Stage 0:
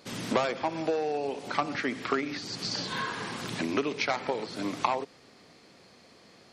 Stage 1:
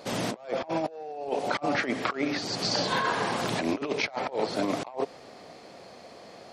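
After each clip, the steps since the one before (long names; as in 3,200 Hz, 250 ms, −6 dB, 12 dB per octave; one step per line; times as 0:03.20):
parametric band 660 Hz +11 dB 1.1 octaves
compressor whose output falls as the input rises −29 dBFS, ratio −0.5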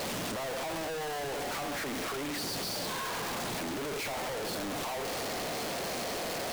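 sign of each sample alone
level −4.5 dB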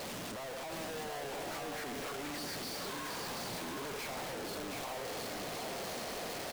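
single-tap delay 721 ms −3.5 dB
level −7 dB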